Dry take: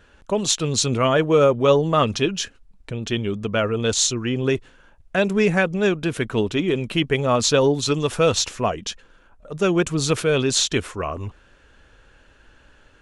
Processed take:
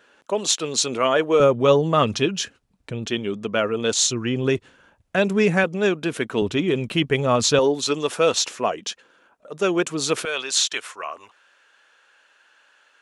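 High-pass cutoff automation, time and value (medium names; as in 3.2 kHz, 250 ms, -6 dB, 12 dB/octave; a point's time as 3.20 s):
320 Hz
from 1.40 s 94 Hz
from 3.06 s 200 Hz
from 4.06 s 92 Hz
from 5.64 s 200 Hz
from 6.42 s 70 Hz
from 7.59 s 280 Hz
from 10.25 s 870 Hz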